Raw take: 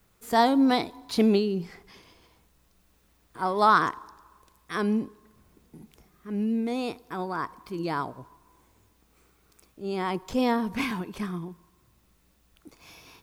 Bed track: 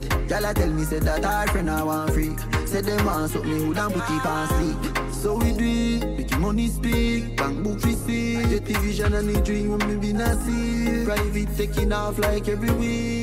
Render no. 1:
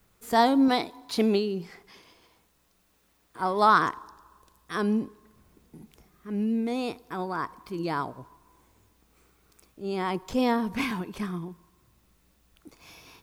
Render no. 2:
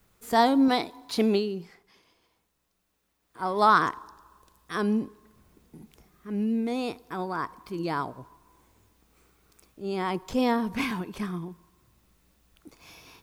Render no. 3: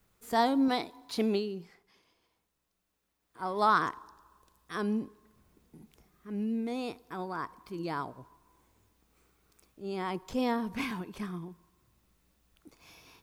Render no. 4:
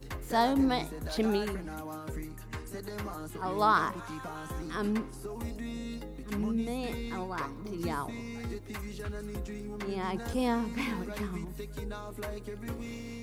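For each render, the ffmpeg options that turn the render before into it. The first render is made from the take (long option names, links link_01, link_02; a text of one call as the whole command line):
ffmpeg -i in.wav -filter_complex "[0:a]asettb=1/sr,asplit=3[link_01][link_02][link_03];[link_01]atrim=end=0.684[link_04];[link_02]atrim=start=0.68:end=3.4,asetpts=PTS-STARTPTS,afade=type=in:duration=0.004:curve=qsin,afade=type=out:start_time=2.716:duration=0.004:curve=qsin,lowshelf=frequency=150:gain=-10[link_05];[link_03]atrim=start=3.396[link_06];[link_04][link_05]acrossfade=duration=0.004:curve1=hsin:curve2=qsin[link_07];[link_07][link_06]acrossfade=duration=0.004:curve1=qsin:curve2=hsin,asettb=1/sr,asplit=3[link_08][link_09][link_10];[link_08]atrim=end=4.014[link_11];[link_09]atrim=start=4.01:end=5.02,asetpts=PTS-STARTPTS,afade=type=in:duration=0.004:curve=qsin,afade=type=out:start_time=1.006:duration=0.004:curve=qsin,equalizer=frequency=2200:width_type=o:width=0.28:gain=-6[link_12];[link_10]atrim=start=5.016[link_13];[link_11][link_12]acrossfade=duration=0.004:curve1=hsin:curve2=qsin[link_14];[link_14][link_13]acrossfade=duration=0.004:curve1=qsin:curve2=hsin" out.wav
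ffmpeg -i in.wav -filter_complex "[0:a]asplit=3[link_01][link_02][link_03];[link_01]atrim=end=1.79,asetpts=PTS-STARTPTS,afade=type=out:start_time=1.39:duration=0.4:silence=0.375837[link_04];[link_02]atrim=start=1.79:end=3.2,asetpts=PTS-STARTPTS,volume=-8.5dB[link_05];[link_03]atrim=start=3.2,asetpts=PTS-STARTPTS,afade=type=in:duration=0.4:silence=0.375837[link_06];[link_04][link_05][link_06]concat=n=3:v=0:a=1" out.wav
ffmpeg -i in.wav -af "volume=-5.5dB" out.wav
ffmpeg -i in.wav -i bed.wav -filter_complex "[1:a]volume=-16.5dB[link_01];[0:a][link_01]amix=inputs=2:normalize=0" out.wav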